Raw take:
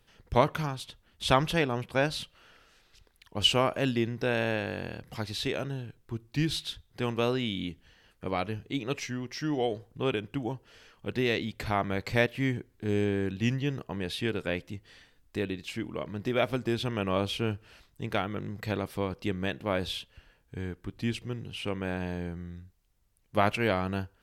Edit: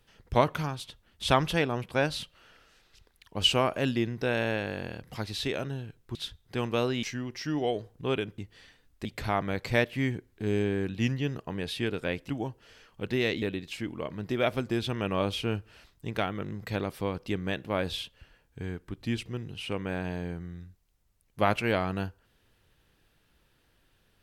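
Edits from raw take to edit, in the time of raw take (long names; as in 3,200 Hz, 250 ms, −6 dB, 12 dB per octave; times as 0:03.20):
0:06.15–0:06.60: remove
0:07.48–0:08.99: remove
0:10.34–0:11.47: swap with 0:14.71–0:15.38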